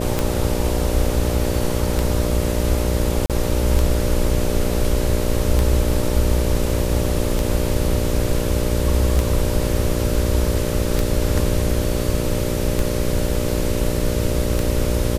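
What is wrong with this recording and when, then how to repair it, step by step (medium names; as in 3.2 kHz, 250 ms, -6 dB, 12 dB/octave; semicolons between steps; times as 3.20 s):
buzz 60 Hz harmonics 10 -24 dBFS
tick 33 1/3 rpm
3.26–3.30 s: dropout 37 ms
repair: de-click; de-hum 60 Hz, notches 10; interpolate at 3.26 s, 37 ms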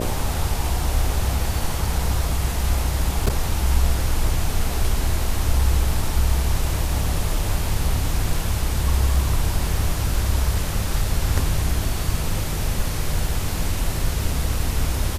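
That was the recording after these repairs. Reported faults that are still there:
nothing left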